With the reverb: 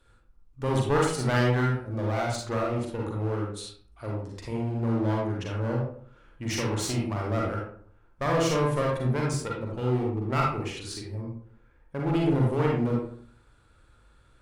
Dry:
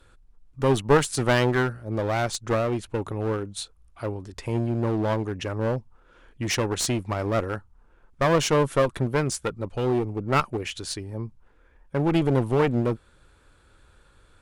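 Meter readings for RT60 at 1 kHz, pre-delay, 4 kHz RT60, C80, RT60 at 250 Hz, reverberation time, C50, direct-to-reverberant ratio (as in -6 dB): 0.55 s, 38 ms, 0.30 s, 5.5 dB, 0.70 s, 0.55 s, 1.0 dB, -2.5 dB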